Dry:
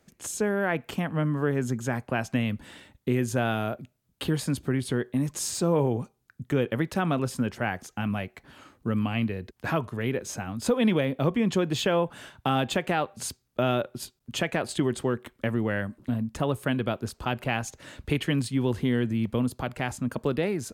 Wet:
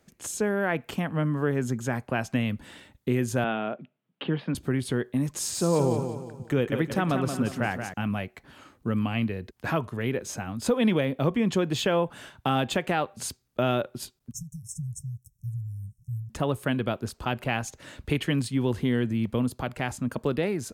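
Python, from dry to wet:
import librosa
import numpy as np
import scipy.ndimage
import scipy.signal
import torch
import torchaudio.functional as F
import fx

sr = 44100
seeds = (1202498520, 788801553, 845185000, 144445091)

y = fx.ellip_bandpass(x, sr, low_hz=160.0, high_hz=3100.0, order=3, stop_db=40, at=(3.44, 4.55))
y = fx.echo_feedback(y, sr, ms=178, feedback_pct=40, wet_db=-7.5, at=(5.39, 7.94))
y = fx.brickwall_bandstop(y, sr, low_hz=170.0, high_hz=5300.0, at=(14.32, 16.3))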